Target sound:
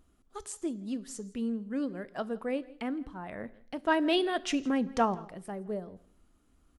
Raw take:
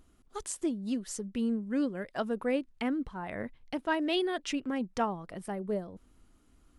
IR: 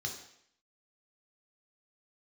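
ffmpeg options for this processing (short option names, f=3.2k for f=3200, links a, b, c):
-filter_complex "[0:a]asettb=1/sr,asplit=3[a][b][c];[a]atrim=end=3.844[d];[b]atrim=start=3.84:end=5.15,asetpts=PTS-STARTPTS,afade=t=in:d=0.004:c=qsin,afade=t=out:st=1.306:d=0.004:c=qsin,acontrast=61[e];[c]atrim=start=5.146[f];[d][e]acrossfade=d=0.004:c1=hsin:c2=qsin[g];[g][f]acrossfade=d=0.004:c1=qsin:c2=hsin,aecho=1:1:165:0.075,asplit=2[h][i];[1:a]atrim=start_sample=2205[j];[i][j]afir=irnorm=-1:irlink=0,volume=-14.5dB[k];[h][k]amix=inputs=2:normalize=0,volume=-3dB"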